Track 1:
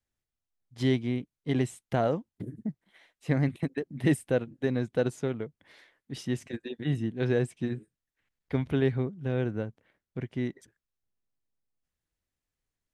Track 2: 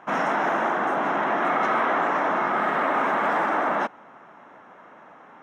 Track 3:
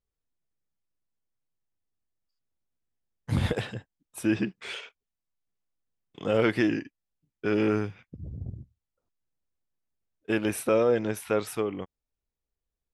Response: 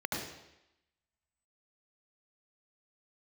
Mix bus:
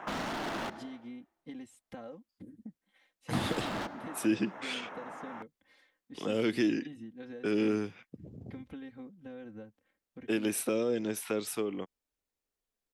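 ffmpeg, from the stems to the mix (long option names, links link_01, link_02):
-filter_complex "[0:a]aecho=1:1:3.8:0.89,acompressor=threshold=-31dB:ratio=6,volume=-11.5dB[link_01];[1:a]acompressor=threshold=-28dB:ratio=2.5,volume=28.5dB,asoftclip=hard,volume=-28.5dB,volume=2.5dB,asplit=3[link_02][link_03][link_04];[link_02]atrim=end=0.7,asetpts=PTS-STARTPTS,afade=type=out:start_time=0.696:duration=0.004:curve=hsin[link_05];[link_03]atrim=start=0.7:end=3.33,asetpts=PTS-STARTPTS,volume=0[link_06];[link_04]atrim=start=3.33,asetpts=PTS-STARTPTS,afade=type=in:duration=0.004:curve=hsin[link_07];[link_05][link_06][link_07]concat=n=3:v=0:a=1,asplit=2[link_08][link_09];[link_09]volume=-19dB[link_10];[2:a]highpass=230,volume=1.5dB[link_11];[3:a]atrim=start_sample=2205[link_12];[link_10][link_12]afir=irnorm=-1:irlink=0[link_13];[link_01][link_08][link_11][link_13]amix=inputs=4:normalize=0,acrossover=split=340|3000[link_14][link_15][link_16];[link_15]acompressor=threshold=-38dB:ratio=6[link_17];[link_14][link_17][link_16]amix=inputs=3:normalize=0"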